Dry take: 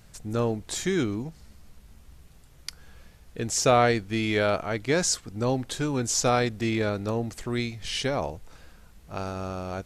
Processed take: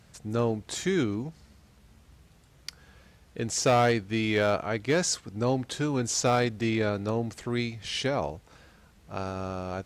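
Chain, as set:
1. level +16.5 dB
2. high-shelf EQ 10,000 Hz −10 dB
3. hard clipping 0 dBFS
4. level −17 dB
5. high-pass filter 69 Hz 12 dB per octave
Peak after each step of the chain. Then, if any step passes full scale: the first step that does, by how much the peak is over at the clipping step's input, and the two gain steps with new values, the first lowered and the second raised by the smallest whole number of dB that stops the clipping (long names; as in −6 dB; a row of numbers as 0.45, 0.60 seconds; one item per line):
+8.0, +8.0, 0.0, −17.0, −13.5 dBFS
step 1, 8.0 dB
step 1 +8.5 dB, step 4 −9 dB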